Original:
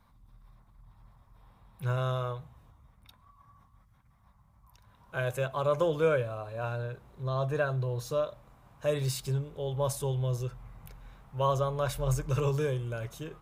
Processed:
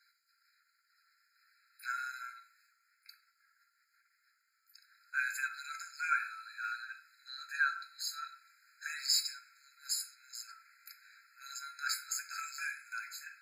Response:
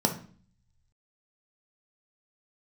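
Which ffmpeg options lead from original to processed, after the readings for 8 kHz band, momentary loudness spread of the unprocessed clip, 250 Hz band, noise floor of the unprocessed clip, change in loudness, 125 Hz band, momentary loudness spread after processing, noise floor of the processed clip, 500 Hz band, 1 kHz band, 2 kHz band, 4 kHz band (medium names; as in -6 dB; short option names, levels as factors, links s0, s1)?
+4.5 dB, 11 LU, under -40 dB, -63 dBFS, -6.0 dB, under -40 dB, 18 LU, -77 dBFS, under -40 dB, -5.5 dB, +5.0 dB, +6.0 dB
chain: -filter_complex "[0:a]highpass=1400[s0];[1:a]atrim=start_sample=2205,asetrate=40131,aresample=44100[s1];[s0][s1]afir=irnorm=-1:irlink=0,afftfilt=real='re*eq(mod(floor(b*sr/1024/1300),2),1)':imag='im*eq(mod(floor(b*sr/1024/1300),2),1)':win_size=1024:overlap=0.75"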